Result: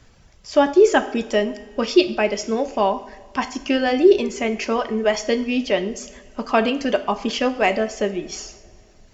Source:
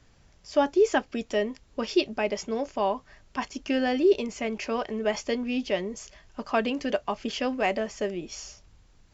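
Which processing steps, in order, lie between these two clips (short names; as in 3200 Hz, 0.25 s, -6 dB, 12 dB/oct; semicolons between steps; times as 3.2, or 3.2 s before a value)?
reverb removal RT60 0.66 s; two-slope reverb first 0.61 s, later 3 s, from -18 dB, DRR 8.5 dB; gain +7.5 dB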